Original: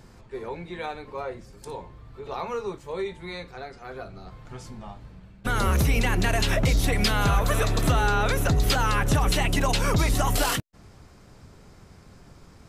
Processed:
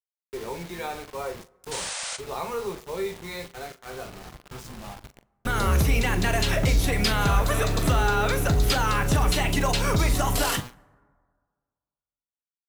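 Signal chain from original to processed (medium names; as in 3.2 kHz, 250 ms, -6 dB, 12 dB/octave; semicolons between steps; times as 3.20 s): de-hum 121.6 Hz, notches 37; expander -39 dBFS; bit crusher 7-bit; painted sound noise, 1.71–2.17 s, 480–9700 Hz -33 dBFS; doubling 41 ms -12 dB; on a send: reverberation RT60 1.8 s, pre-delay 3 ms, DRR 23 dB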